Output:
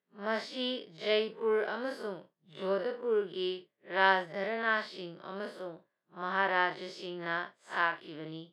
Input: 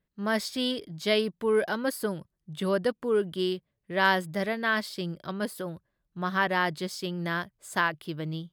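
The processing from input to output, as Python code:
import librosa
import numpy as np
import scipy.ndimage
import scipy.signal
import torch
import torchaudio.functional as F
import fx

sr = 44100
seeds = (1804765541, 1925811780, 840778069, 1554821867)

y = fx.spec_blur(x, sr, span_ms=103.0)
y = fx.bandpass_edges(y, sr, low_hz=370.0, high_hz=3700.0)
y = fx.doubler(y, sr, ms=31.0, db=-13.5)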